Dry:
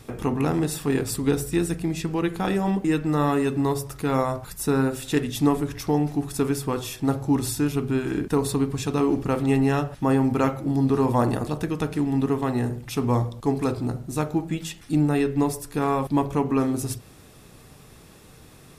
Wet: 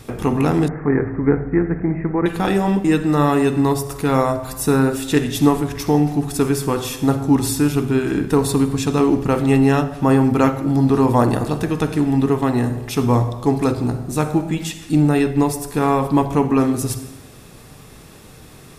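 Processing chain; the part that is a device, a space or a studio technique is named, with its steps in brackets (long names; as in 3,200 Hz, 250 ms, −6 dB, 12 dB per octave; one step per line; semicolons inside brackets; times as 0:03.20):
compressed reverb return (on a send at −9 dB: convolution reverb RT60 0.95 s, pre-delay 45 ms + downward compressor, threshold −22 dBFS, peak gain reduction 8.5 dB)
0:00.68–0:02.26: on the sum: Butterworth low-pass 2,200 Hz 96 dB per octave
level +6 dB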